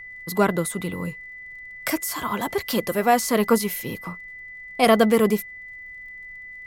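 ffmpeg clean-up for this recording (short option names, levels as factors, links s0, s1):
-af "adeclick=t=4,bandreject=f=2000:w=30,agate=range=0.0891:threshold=0.0251"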